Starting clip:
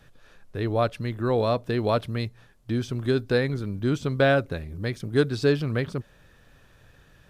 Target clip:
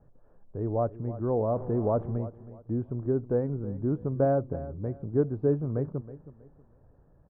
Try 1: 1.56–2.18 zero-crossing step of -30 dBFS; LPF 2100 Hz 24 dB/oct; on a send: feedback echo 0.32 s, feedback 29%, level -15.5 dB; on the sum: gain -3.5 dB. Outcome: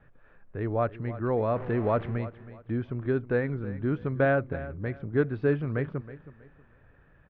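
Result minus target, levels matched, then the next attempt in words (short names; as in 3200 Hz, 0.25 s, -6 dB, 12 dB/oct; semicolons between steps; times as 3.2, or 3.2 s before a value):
2000 Hz band +18.0 dB
1.56–2.18 zero-crossing step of -30 dBFS; LPF 920 Hz 24 dB/oct; on a send: feedback echo 0.32 s, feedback 29%, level -15.5 dB; on the sum: gain -3.5 dB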